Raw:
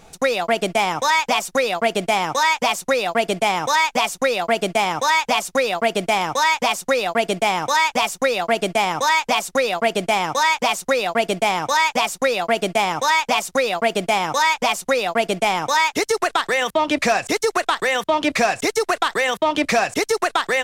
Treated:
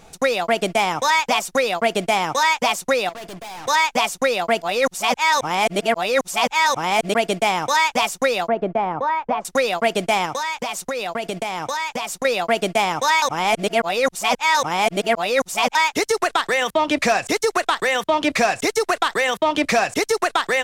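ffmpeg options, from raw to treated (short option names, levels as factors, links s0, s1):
-filter_complex "[0:a]asettb=1/sr,asplit=3[s0][s1][s2];[s0]atrim=end=3.094[s3];[s1]atrim=start=3.09:end=3.68,asetpts=PTS-STARTPTS,afade=t=in:d=0.004:c=qsin,afade=t=out:st=0.586:d=0.004:c=qsin,aeval=exprs='(tanh(44.7*val(0)+0.2)-tanh(0.2))/44.7':c=same[s4];[s2]atrim=start=3.676[s5];[s3][s4]acrossfade=d=0.004:c1=hsin:c2=qsin[s6];[s6][s5]acrossfade=d=0.004:c1=qsin:c2=hsin,asettb=1/sr,asplit=3[s7][s8][s9];[s7]atrim=end=8.484[s10];[s8]atrim=start=8.48:end=9.45,asetpts=PTS-STARTPTS,afade=t=in:d=0.004:c=qsin,afade=t=out:st=0.966:d=0.004:c=qsin,lowpass=1100[s11];[s9]atrim=start=9.446[s12];[s10][s11]acrossfade=d=0.004:c1=hsin:c2=qsin[s13];[s13][s12]acrossfade=d=0.004:c1=qsin:c2=hsin,asettb=1/sr,asplit=3[s14][s15][s16];[s14]atrim=end=10.254[s17];[s15]atrim=start=10.25:end=12.25,asetpts=PTS-STARTPTS,afade=t=in:d=0.004:c=qsin,afade=t=out:st=1.996:d=0.004:c=qsin,acompressor=threshold=0.0891:ratio=6:attack=3.2:release=140:knee=1:detection=peak[s18];[s16]atrim=start=12.246[s19];[s17][s18]acrossfade=d=0.004:c1=hsin:c2=qsin[s20];[s20][s19]acrossfade=d=0.004:c1=qsin:c2=hsin,asplit=5[s21][s22][s23][s24][s25];[s21]atrim=end=4.622[s26];[s22]atrim=start=4.618:end=7.142,asetpts=PTS-STARTPTS,areverse[s27];[s23]atrim=start=7.138:end=13.222[s28];[s24]atrim=start=13.218:end=15.752,asetpts=PTS-STARTPTS,areverse[s29];[s25]atrim=start=15.748[s30];[s26][s27]acrossfade=d=0.004:c1=hsin:c2=hsin[s31];[s31][s28]acrossfade=d=0.004:c1=hsin:c2=hsin[s32];[s32][s29]acrossfade=d=0.004:c1=hsin:c2=hsin[s33];[s33][s30]acrossfade=d=0.004:c1=hsin:c2=hsin"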